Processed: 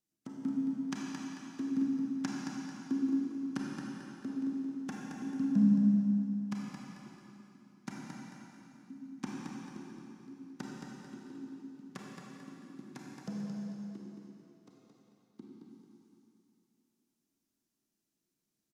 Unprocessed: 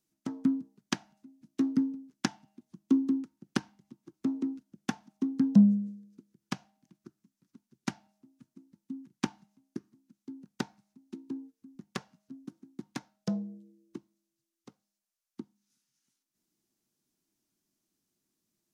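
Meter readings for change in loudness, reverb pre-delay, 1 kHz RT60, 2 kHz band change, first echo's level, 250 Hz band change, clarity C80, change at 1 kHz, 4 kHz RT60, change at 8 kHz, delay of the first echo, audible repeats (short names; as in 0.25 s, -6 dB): -3.0 dB, 28 ms, 3.0 s, -5.0 dB, -6.0 dB, -2.0 dB, -2.0 dB, -4.0 dB, 2.7 s, n/a, 0.221 s, 2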